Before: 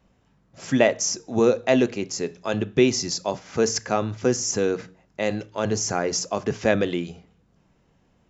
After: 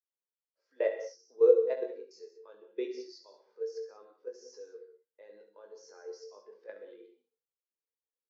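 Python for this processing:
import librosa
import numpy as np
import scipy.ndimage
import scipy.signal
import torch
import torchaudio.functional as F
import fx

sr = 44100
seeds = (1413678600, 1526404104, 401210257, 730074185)

y = fx.level_steps(x, sr, step_db=17)
y = fx.cabinet(y, sr, low_hz=360.0, low_slope=24, high_hz=5700.0, hz=(480.0, 690.0, 990.0, 1600.0, 2800.0, 4500.0), db=(7, -9, 4, 3, -4, 6))
y = fx.room_early_taps(y, sr, ms=(20, 69), db=(-5.5, -8.5))
y = fx.rev_gated(y, sr, seeds[0], gate_ms=220, shape='flat', drr_db=4.5)
y = fx.spectral_expand(y, sr, expansion=1.5)
y = y * librosa.db_to_amplitude(-6.5)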